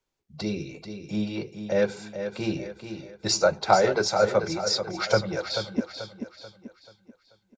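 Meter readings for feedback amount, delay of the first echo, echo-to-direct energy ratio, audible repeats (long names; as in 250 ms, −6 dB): 41%, 436 ms, −8.0 dB, 4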